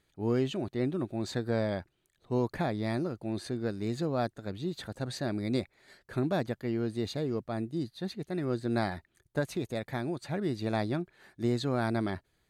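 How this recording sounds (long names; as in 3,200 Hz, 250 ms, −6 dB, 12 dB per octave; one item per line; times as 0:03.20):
background noise floor −76 dBFS
spectral slope −6.0 dB per octave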